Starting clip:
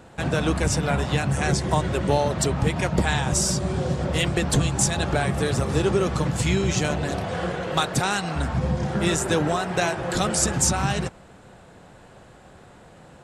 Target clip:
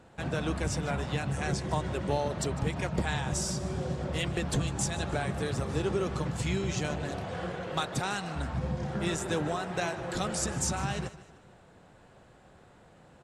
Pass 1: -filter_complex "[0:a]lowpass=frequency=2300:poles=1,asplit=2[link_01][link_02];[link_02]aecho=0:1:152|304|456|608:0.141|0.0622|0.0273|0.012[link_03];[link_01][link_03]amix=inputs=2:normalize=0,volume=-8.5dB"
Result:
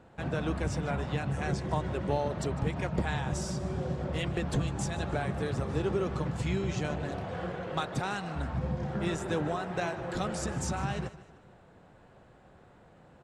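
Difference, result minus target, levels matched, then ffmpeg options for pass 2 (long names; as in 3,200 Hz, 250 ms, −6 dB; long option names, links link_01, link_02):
8,000 Hz band −7.0 dB
-filter_complex "[0:a]lowpass=frequency=8300:poles=1,asplit=2[link_01][link_02];[link_02]aecho=0:1:152|304|456|608:0.141|0.0622|0.0273|0.012[link_03];[link_01][link_03]amix=inputs=2:normalize=0,volume=-8.5dB"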